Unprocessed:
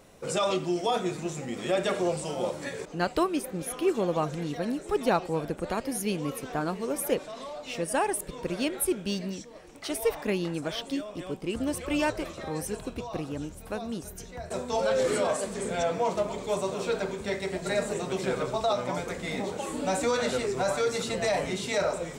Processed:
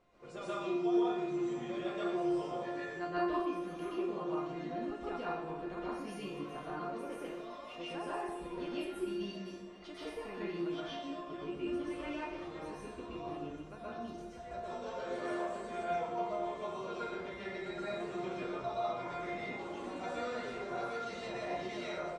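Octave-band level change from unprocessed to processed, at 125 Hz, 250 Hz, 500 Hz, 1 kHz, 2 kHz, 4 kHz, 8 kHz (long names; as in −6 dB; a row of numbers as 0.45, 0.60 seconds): −13.5, −6.5, −10.0, −7.0, −9.5, −13.0, −23.5 decibels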